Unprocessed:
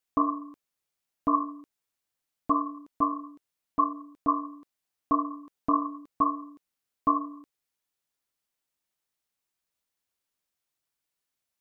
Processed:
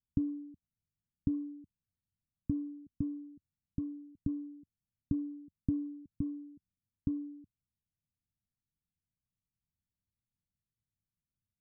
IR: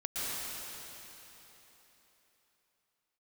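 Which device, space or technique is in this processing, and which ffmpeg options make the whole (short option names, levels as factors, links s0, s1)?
the neighbour's flat through the wall: -af "lowpass=f=200:w=0.5412,lowpass=f=200:w=1.3066,equalizer=f=92:t=o:w=0.81:g=5.5,volume=2.66"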